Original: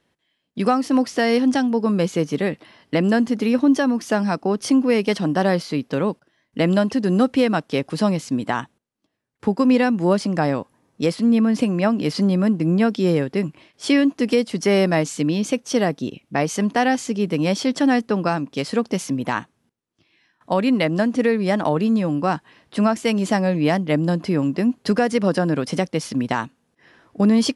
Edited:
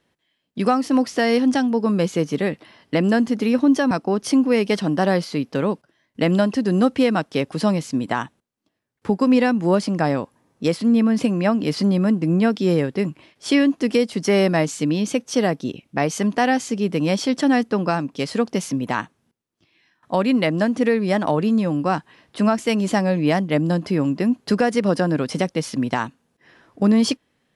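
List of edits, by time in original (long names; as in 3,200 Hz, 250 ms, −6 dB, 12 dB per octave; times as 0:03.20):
0:03.91–0:04.29: remove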